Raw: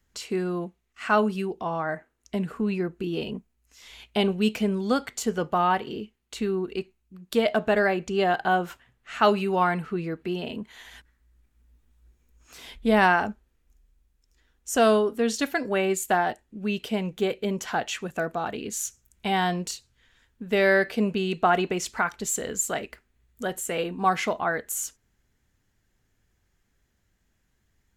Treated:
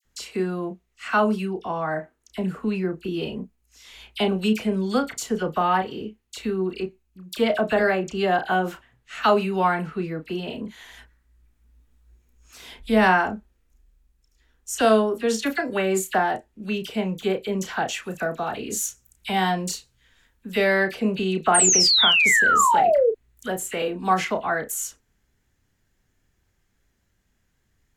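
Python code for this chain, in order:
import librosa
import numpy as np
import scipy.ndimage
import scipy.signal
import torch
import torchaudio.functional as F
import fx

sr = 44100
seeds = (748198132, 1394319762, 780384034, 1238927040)

y = fx.high_shelf(x, sr, hz=8900.0, db=6.0, at=(17.93, 20.64))
y = fx.spec_paint(y, sr, seeds[0], shape='fall', start_s=21.54, length_s=1.53, low_hz=430.0, high_hz=9000.0, level_db=-19.0)
y = fx.doubler(y, sr, ms=32.0, db=-8.5)
y = fx.dispersion(y, sr, late='lows', ms=46.0, hz=1800.0)
y = F.gain(torch.from_numpy(y), 1.0).numpy()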